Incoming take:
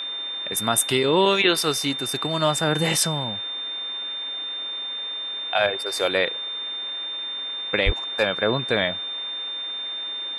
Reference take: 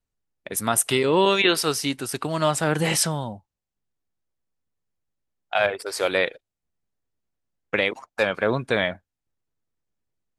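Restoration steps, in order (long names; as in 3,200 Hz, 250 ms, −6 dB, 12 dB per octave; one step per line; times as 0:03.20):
notch filter 3,600 Hz, Q 30
0:07.85–0:07.97: high-pass filter 140 Hz 24 dB per octave
noise reduction from a noise print 30 dB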